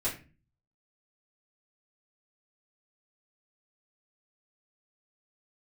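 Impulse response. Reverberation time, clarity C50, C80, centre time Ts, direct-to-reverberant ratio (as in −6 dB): 0.35 s, 10.0 dB, 15.0 dB, 24 ms, −10.0 dB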